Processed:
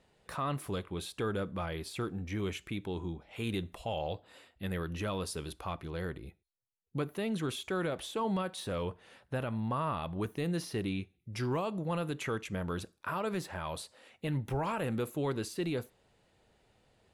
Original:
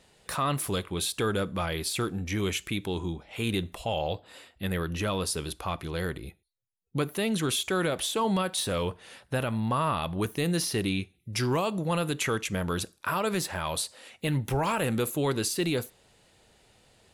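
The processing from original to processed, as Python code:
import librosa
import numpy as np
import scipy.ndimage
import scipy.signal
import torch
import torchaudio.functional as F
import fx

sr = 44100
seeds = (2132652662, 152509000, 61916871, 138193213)

y = fx.high_shelf(x, sr, hz=3200.0, db=fx.steps((0.0, -11.0), (3.21, -5.5), (5.72, -10.5)))
y = y * librosa.db_to_amplitude(-5.5)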